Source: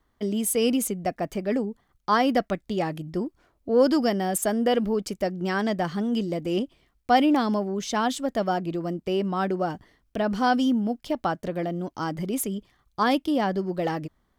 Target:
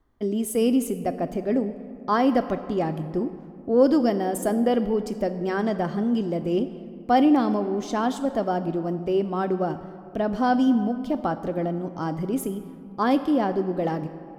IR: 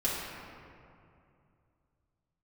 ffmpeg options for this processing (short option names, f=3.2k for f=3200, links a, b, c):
-filter_complex "[0:a]tiltshelf=f=1.4k:g=5.5,asplit=2[a][b];[1:a]atrim=start_sample=2205,highshelf=f=3.8k:g=9.5[c];[b][c]afir=irnorm=-1:irlink=0,volume=-17.5dB[d];[a][d]amix=inputs=2:normalize=0,volume=-4dB"